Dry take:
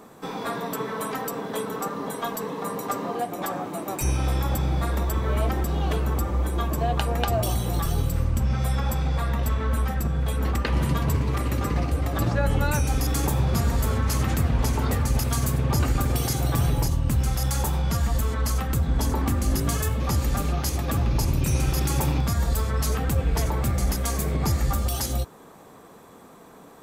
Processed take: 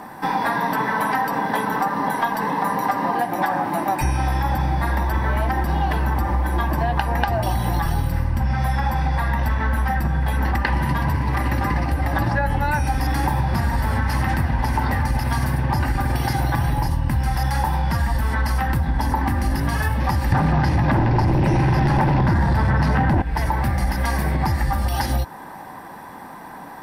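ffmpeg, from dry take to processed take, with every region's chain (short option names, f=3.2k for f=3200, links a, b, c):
-filter_complex "[0:a]asettb=1/sr,asplit=3[a][b][c];[a]atrim=end=20.324[d];[b]atrim=start=20.32:end=23.22,asetpts=PTS-STARTPTS,afade=t=in:d=0.004:c=qsin,afade=t=out:st=2.896:d=0.004:c=qsin,highpass=f=100:w=0.5412,highpass=f=100:w=1.3066,aemphasis=mode=reproduction:type=bsi,aeval=exprs='0.422*sin(PI/2*3.16*val(0)/0.422)':c=same[e];[c]atrim=start=23.216[f];[d][e]acrossfade=d=0.004:c1=hsin:c2=qsin[g];[g][f]acrossfade=d=0.004:c1=qsin:c2=hsin,acrossover=split=5000[h][i];[i]acompressor=threshold=-39dB:ratio=4:attack=1:release=60[j];[h][j]amix=inputs=2:normalize=0,superequalizer=7b=0.447:9b=2.82:11b=2.51:13b=0.708:15b=0.282,acompressor=threshold=-25dB:ratio=6,volume=8dB"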